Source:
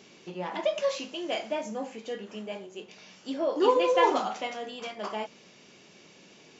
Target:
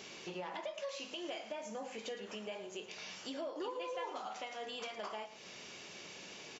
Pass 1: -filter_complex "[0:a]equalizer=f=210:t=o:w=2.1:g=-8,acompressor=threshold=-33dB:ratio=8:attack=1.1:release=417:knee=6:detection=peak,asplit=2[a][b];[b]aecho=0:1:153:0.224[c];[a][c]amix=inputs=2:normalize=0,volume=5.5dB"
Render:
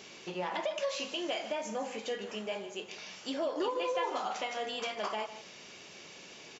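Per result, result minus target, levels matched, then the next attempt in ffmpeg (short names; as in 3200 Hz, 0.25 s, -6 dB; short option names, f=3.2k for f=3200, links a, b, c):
compressor: peak gain reduction -8.5 dB; echo 42 ms late
-filter_complex "[0:a]equalizer=f=210:t=o:w=2.1:g=-8,acompressor=threshold=-42.5dB:ratio=8:attack=1.1:release=417:knee=6:detection=peak,asplit=2[a][b];[b]aecho=0:1:153:0.224[c];[a][c]amix=inputs=2:normalize=0,volume=5.5dB"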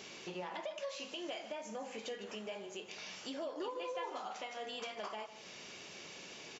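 echo 42 ms late
-filter_complex "[0:a]equalizer=f=210:t=o:w=2.1:g=-8,acompressor=threshold=-42.5dB:ratio=8:attack=1.1:release=417:knee=6:detection=peak,asplit=2[a][b];[b]aecho=0:1:111:0.224[c];[a][c]amix=inputs=2:normalize=0,volume=5.5dB"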